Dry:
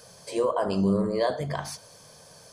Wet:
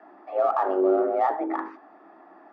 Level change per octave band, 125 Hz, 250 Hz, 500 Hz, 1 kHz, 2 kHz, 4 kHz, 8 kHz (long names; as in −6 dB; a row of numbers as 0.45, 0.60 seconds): below −30 dB, −2.0 dB, +3.0 dB, +8.0 dB, −0.5 dB, below −15 dB, below −25 dB